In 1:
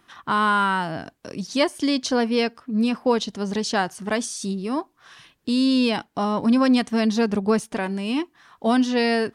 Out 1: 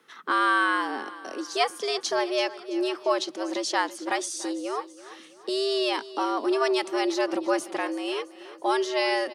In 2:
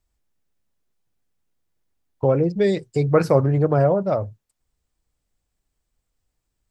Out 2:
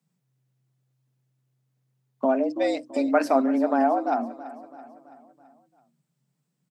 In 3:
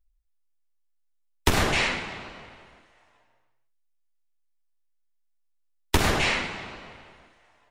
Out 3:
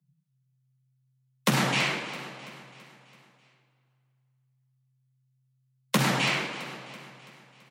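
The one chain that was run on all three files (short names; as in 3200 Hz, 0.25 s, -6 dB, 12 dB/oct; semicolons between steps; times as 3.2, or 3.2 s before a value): dynamic EQ 300 Hz, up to -7 dB, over -33 dBFS, Q 1.4; frequency shift +130 Hz; feedback echo 0.332 s, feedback 53%, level -16.5 dB; gain -2 dB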